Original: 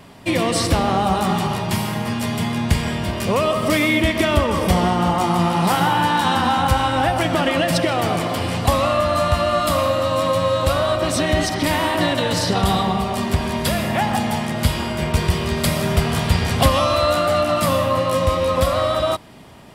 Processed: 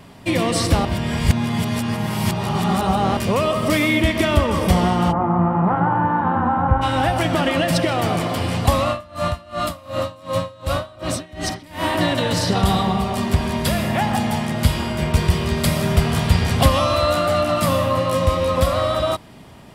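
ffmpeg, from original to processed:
ffmpeg -i in.wav -filter_complex "[0:a]asplit=3[link_01][link_02][link_03];[link_01]afade=type=out:start_time=5.11:duration=0.02[link_04];[link_02]lowpass=frequency=1500:width=0.5412,lowpass=frequency=1500:width=1.3066,afade=type=in:start_time=5.11:duration=0.02,afade=type=out:start_time=6.81:duration=0.02[link_05];[link_03]afade=type=in:start_time=6.81:duration=0.02[link_06];[link_04][link_05][link_06]amix=inputs=3:normalize=0,asplit=3[link_07][link_08][link_09];[link_07]afade=type=out:start_time=8.83:duration=0.02[link_10];[link_08]aeval=exprs='val(0)*pow(10,-25*(0.5-0.5*cos(2*PI*2.7*n/s))/20)':channel_layout=same,afade=type=in:start_time=8.83:duration=0.02,afade=type=out:start_time=11.84:duration=0.02[link_11];[link_09]afade=type=in:start_time=11.84:duration=0.02[link_12];[link_10][link_11][link_12]amix=inputs=3:normalize=0,asplit=3[link_13][link_14][link_15];[link_13]atrim=end=0.852[link_16];[link_14]atrim=start=0.848:end=3.172,asetpts=PTS-STARTPTS,areverse[link_17];[link_15]atrim=start=3.168[link_18];[link_16][link_17]acrossfade=duration=0.004:curve1=hsin:curve2=hsin[link_19];[link_19][link_18]acrossfade=duration=0.004:curve1=hsin:curve2=hsin,bass=frequency=250:gain=3,treble=frequency=4000:gain=0,volume=-1dB" out.wav

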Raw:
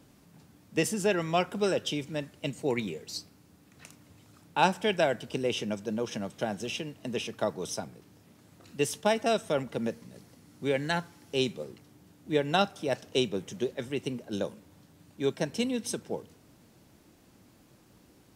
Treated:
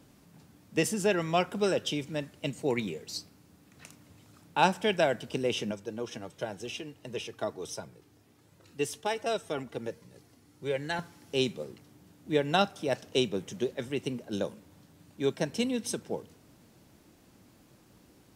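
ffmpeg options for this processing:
ffmpeg -i in.wav -filter_complex "[0:a]asettb=1/sr,asplit=3[link_01][link_02][link_03];[link_01]atrim=end=5.714[link_04];[link_02]atrim=start=5.71:end=10.99,asetpts=PTS-STARTPTS,afade=type=in:duration=0.004:curve=qsin,afade=type=out:start_time=5.276:duration=0.004:curve=qsin,flanger=delay=1.9:depth=1:regen=-39:speed=1.4:shape=triangular[link_05];[link_03]atrim=start=10.986[link_06];[link_04][link_05]acrossfade=duration=0.004:curve1=hsin:curve2=qsin[link_07];[link_07][link_06]acrossfade=duration=0.004:curve1=qsin:curve2=hsin" out.wav

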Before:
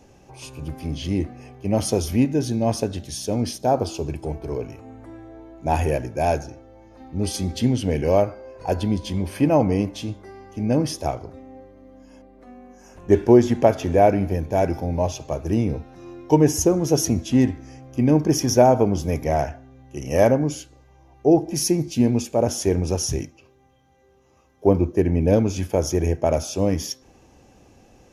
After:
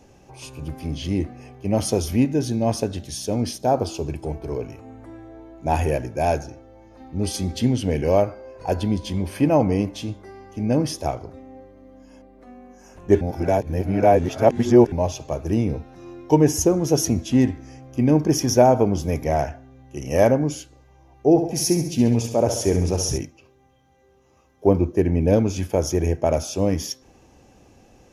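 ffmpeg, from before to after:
ffmpeg -i in.wav -filter_complex "[0:a]asettb=1/sr,asplit=3[link_01][link_02][link_03];[link_01]atrim=end=21.294[link_04];[link_02]atrim=start=21.29:end=23.18,asetpts=PTS-STARTPTS,afade=type=in:duration=0.004:curve=qsin,afade=type=out:start_time=1.886:duration=0.004:curve=qsin,aecho=1:1:68|136|204|272|340|408:0.398|0.207|0.108|0.056|0.0291|0.0151,atrim=end_sample=83349[link_05];[link_03]atrim=start=23.176[link_06];[link_04][link_05]acrossfade=duration=0.004:curve1=hsin:curve2=qsin[link_07];[link_07][link_06]acrossfade=duration=0.004:curve1=qsin:curve2=hsin,asplit=3[link_08][link_09][link_10];[link_08]atrim=end=13.212[link_11];[link_09]atrim=start=13.208:end=14.922,asetpts=PTS-STARTPTS,areverse[link_12];[link_10]atrim=start=14.918[link_13];[link_11][link_12]acrossfade=duration=0.004:curve1=hsin:curve2=hsin[link_14];[link_14][link_13]acrossfade=duration=0.004:curve1=hsin:curve2=hsin" out.wav

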